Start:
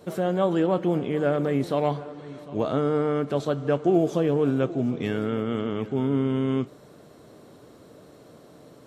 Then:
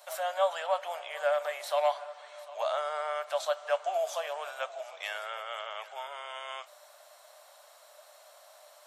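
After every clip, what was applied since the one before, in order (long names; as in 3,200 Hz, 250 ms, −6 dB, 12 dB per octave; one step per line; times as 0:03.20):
Chebyshev high-pass filter 590 Hz, order 6
high-shelf EQ 5,300 Hz +8.5 dB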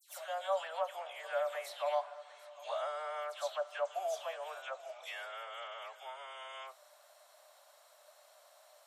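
all-pass dispersion lows, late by 103 ms, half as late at 2,400 Hz
level −6.5 dB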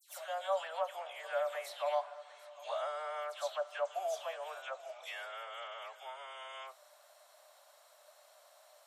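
no processing that can be heard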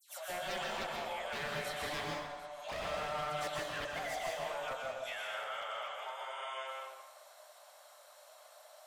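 wave folding −37 dBFS
convolution reverb RT60 1.2 s, pre-delay 113 ms, DRR −1 dB
level +1 dB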